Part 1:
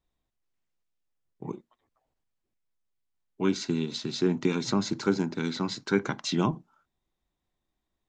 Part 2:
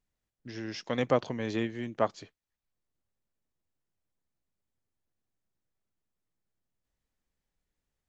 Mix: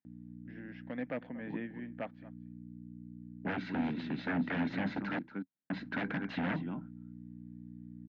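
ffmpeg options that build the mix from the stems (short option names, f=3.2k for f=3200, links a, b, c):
-filter_complex "[0:a]aeval=exprs='val(0)+0.00794*(sin(2*PI*60*n/s)+sin(2*PI*2*60*n/s)/2+sin(2*PI*3*60*n/s)/3+sin(2*PI*4*60*n/s)/4+sin(2*PI*5*60*n/s)/5)':c=same,adelay=50,volume=-0.5dB,asplit=3[a][b][c];[a]atrim=end=5.19,asetpts=PTS-STARTPTS,afade=t=out:st=5.186:d=0.004:c=hsin[d];[b]atrim=start=5.19:end=5.7,asetpts=PTS-STARTPTS,volume=0[e];[c]atrim=start=5.7,asetpts=PTS-STARTPTS,afade=t=in:d=0.004:c=hsin[f];[d][e][f]concat=n=3:v=0:a=1,asplit=2[g][h];[h]volume=-15dB[i];[1:a]highshelf=f=4.1k:g=-7,volume=-9dB,asplit=3[j][k][l];[k]volume=-20dB[m];[l]apad=whole_len=358561[n];[g][n]sidechaincompress=threshold=-44dB:ratio=8:attack=16:release=238[o];[i][m]amix=inputs=2:normalize=0,aecho=0:1:234:1[p];[o][j][p]amix=inputs=3:normalize=0,lowshelf=f=450:g=-2.5,aeval=exprs='0.0355*(abs(mod(val(0)/0.0355+3,4)-2)-1)':c=same,highpass=f=100:w=0.5412,highpass=f=100:w=1.3066,equalizer=f=110:t=q:w=4:g=-7,equalizer=f=190:t=q:w=4:g=4,equalizer=f=270:t=q:w=4:g=9,equalizer=f=390:t=q:w=4:g=-9,equalizer=f=1.1k:t=q:w=4:g=-8,equalizer=f=1.7k:t=q:w=4:g=6,lowpass=f=2.6k:w=0.5412,lowpass=f=2.6k:w=1.3066"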